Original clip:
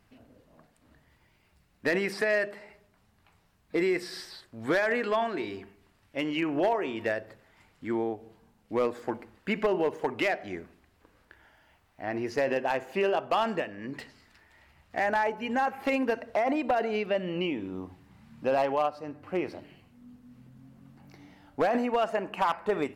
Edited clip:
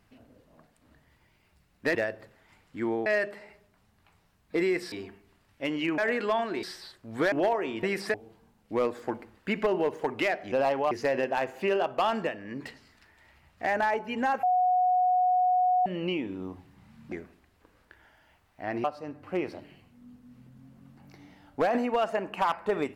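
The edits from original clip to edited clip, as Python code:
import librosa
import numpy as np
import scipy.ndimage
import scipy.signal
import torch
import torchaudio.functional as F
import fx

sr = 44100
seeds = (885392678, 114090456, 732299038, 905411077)

y = fx.edit(x, sr, fx.swap(start_s=1.95, length_s=0.31, other_s=7.03, other_length_s=1.11),
    fx.swap(start_s=4.12, length_s=0.69, other_s=5.46, other_length_s=1.06),
    fx.swap(start_s=10.52, length_s=1.72, other_s=18.45, other_length_s=0.39),
    fx.bleep(start_s=15.76, length_s=1.43, hz=731.0, db=-20.5), tone=tone)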